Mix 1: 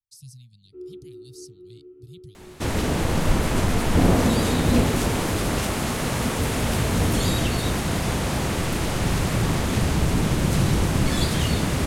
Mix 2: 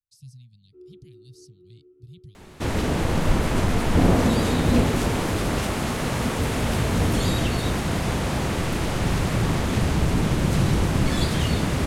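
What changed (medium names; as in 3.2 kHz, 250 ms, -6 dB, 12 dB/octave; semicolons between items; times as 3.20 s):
speech: add treble shelf 4.3 kHz -7.5 dB; first sound -8.5 dB; master: add treble shelf 5.6 kHz -5.5 dB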